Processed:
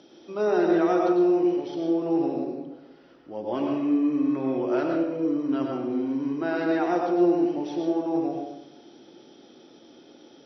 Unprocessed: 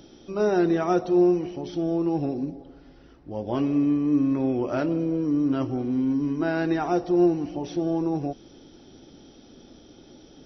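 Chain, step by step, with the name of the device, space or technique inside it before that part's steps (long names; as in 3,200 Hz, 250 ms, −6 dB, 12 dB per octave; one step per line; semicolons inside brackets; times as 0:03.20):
supermarket ceiling speaker (band-pass filter 260–5,100 Hz; convolution reverb RT60 0.85 s, pre-delay 92 ms, DRR 1 dB)
level −1.5 dB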